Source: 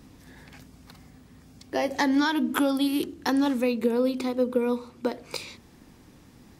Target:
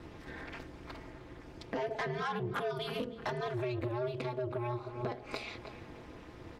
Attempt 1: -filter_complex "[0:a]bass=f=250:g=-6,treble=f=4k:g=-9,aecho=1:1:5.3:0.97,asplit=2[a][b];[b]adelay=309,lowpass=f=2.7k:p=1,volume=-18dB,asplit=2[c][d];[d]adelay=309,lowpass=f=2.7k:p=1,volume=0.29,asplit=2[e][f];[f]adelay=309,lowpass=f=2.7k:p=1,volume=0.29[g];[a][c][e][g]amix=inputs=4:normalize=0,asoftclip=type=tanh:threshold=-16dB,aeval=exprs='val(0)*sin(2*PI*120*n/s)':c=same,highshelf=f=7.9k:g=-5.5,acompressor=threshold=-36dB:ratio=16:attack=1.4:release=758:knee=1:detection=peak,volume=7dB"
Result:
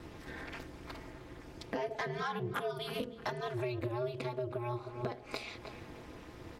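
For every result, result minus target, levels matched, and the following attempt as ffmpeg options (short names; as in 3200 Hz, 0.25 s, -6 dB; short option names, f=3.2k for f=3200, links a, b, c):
soft clip: distortion -8 dB; 8000 Hz band +4.0 dB
-filter_complex "[0:a]bass=f=250:g=-6,treble=f=4k:g=-9,aecho=1:1:5.3:0.97,asplit=2[a][b];[b]adelay=309,lowpass=f=2.7k:p=1,volume=-18dB,asplit=2[c][d];[d]adelay=309,lowpass=f=2.7k:p=1,volume=0.29,asplit=2[e][f];[f]adelay=309,lowpass=f=2.7k:p=1,volume=0.29[g];[a][c][e][g]amix=inputs=4:normalize=0,asoftclip=type=tanh:threshold=-22.5dB,aeval=exprs='val(0)*sin(2*PI*120*n/s)':c=same,highshelf=f=7.9k:g=-5.5,acompressor=threshold=-36dB:ratio=16:attack=1.4:release=758:knee=1:detection=peak,volume=7dB"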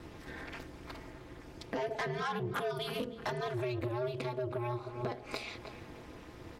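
8000 Hz band +4.5 dB
-filter_complex "[0:a]bass=f=250:g=-6,treble=f=4k:g=-9,aecho=1:1:5.3:0.97,asplit=2[a][b];[b]adelay=309,lowpass=f=2.7k:p=1,volume=-18dB,asplit=2[c][d];[d]adelay=309,lowpass=f=2.7k:p=1,volume=0.29,asplit=2[e][f];[f]adelay=309,lowpass=f=2.7k:p=1,volume=0.29[g];[a][c][e][g]amix=inputs=4:normalize=0,asoftclip=type=tanh:threshold=-22.5dB,aeval=exprs='val(0)*sin(2*PI*120*n/s)':c=same,highshelf=f=7.9k:g=-16,acompressor=threshold=-36dB:ratio=16:attack=1.4:release=758:knee=1:detection=peak,volume=7dB"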